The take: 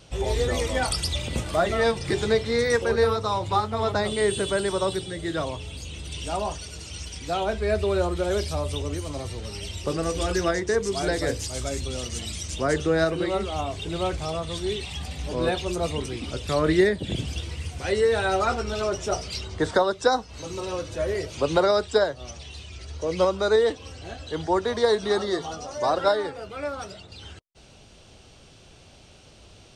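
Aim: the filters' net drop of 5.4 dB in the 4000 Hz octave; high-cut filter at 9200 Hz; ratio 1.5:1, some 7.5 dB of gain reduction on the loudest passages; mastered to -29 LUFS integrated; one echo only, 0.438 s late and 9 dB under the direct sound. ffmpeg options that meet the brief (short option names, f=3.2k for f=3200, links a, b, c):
-af "lowpass=9.2k,equalizer=f=4k:t=o:g=-6.5,acompressor=threshold=-36dB:ratio=1.5,aecho=1:1:438:0.355,volume=2.5dB"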